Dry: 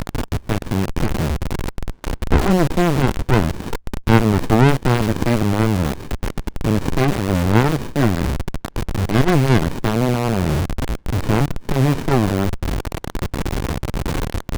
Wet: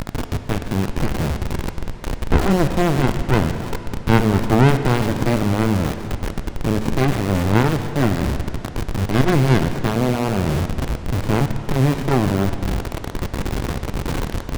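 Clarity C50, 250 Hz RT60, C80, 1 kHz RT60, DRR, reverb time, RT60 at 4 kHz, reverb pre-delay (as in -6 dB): 9.0 dB, 2.9 s, 9.5 dB, 2.8 s, 8.0 dB, 2.8 s, 2.6 s, 7 ms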